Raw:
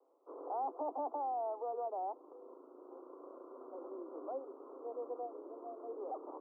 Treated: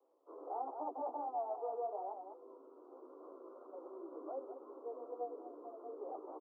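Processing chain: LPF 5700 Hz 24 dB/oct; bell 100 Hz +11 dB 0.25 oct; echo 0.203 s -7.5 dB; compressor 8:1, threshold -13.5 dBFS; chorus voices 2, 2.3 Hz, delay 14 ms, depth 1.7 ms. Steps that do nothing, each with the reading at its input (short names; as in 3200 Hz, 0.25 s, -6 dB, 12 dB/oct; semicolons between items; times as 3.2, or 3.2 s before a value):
LPF 5700 Hz: input band ends at 1400 Hz; bell 100 Hz: input band starts at 230 Hz; compressor, threshold -13.5 dBFS: input peak -28.5 dBFS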